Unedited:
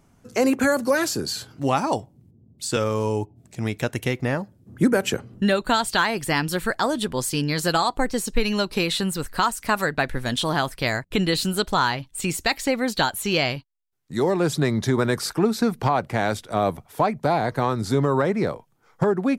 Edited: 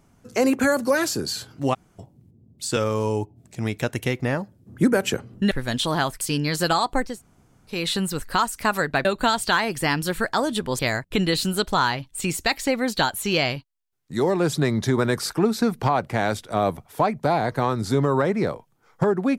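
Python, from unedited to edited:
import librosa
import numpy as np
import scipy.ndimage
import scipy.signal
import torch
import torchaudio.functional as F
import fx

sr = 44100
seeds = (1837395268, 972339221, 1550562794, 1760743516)

y = fx.edit(x, sr, fx.room_tone_fill(start_s=1.74, length_s=0.25, crossfade_s=0.02),
    fx.swap(start_s=5.51, length_s=1.74, other_s=10.09, other_length_s=0.7),
    fx.room_tone_fill(start_s=8.14, length_s=0.66, crossfade_s=0.24), tone=tone)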